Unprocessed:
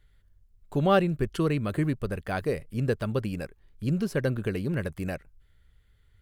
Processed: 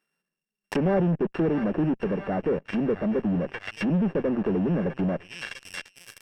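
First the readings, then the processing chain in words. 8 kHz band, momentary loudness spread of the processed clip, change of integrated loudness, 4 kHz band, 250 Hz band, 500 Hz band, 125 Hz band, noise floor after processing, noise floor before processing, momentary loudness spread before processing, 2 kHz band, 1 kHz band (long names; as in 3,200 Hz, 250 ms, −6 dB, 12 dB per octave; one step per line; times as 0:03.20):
can't be measured, 12 LU, +2.5 dB, 0.0 dB, +5.0 dB, +2.0 dB, −0.5 dB, below −85 dBFS, −63 dBFS, 12 LU, +0.5 dB, −2.0 dB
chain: samples sorted by size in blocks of 16 samples
elliptic high-pass filter 170 Hz, stop band 40 dB
delay with a high-pass on its return 652 ms, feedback 40%, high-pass 1,700 Hz, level −7 dB
in parallel at −4.5 dB: fuzz pedal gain 45 dB, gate −43 dBFS
on the sum: parametric band 1,700 Hz +9.5 dB 0.33 octaves
treble cut that deepens with the level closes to 730 Hz, closed at −16.5 dBFS
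level −5.5 dB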